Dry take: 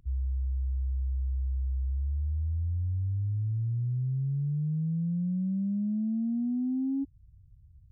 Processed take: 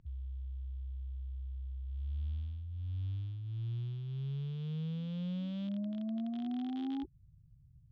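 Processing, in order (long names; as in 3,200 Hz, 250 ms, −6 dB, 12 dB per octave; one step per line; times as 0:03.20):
loose part that buzzes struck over −41 dBFS, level −48 dBFS
formants moved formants +5 semitones
high-frequency loss of the air 130 metres
level −5 dB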